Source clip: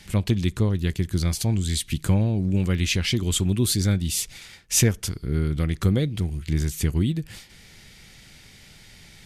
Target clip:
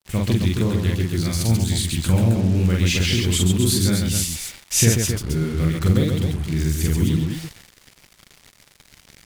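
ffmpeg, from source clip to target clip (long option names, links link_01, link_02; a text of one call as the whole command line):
ffmpeg -i in.wav -af "aecho=1:1:43.73|137|265.3:0.891|0.631|0.501,acrusher=bits=5:mix=0:aa=0.5" out.wav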